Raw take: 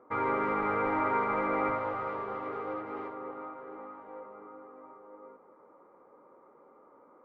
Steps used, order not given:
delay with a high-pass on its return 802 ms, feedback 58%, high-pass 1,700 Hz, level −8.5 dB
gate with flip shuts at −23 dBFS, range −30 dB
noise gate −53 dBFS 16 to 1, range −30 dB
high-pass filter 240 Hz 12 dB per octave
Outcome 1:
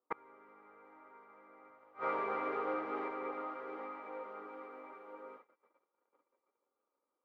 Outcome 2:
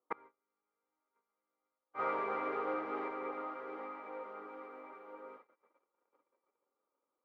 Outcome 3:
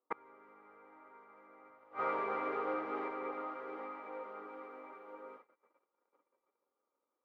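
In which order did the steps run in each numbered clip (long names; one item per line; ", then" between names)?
delay with a high-pass on its return, then noise gate, then high-pass filter, then gate with flip
delay with a high-pass on its return, then gate with flip, then noise gate, then high-pass filter
delay with a high-pass on its return, then noise gate, then gate with flip, then high-pass filter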